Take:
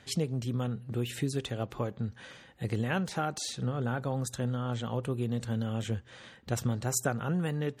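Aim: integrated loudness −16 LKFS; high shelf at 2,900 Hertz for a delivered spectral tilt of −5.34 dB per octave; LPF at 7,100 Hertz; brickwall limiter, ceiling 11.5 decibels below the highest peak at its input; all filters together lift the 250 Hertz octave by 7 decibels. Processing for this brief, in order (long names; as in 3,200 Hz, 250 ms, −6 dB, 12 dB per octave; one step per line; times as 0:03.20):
low-pass filter 7,100 Hz
parametric band 250 Hz +8.5 dB
high-shelf EQ 2,900 Hz +6 dB
level +17 dB
brickwall limiter −6 dBFS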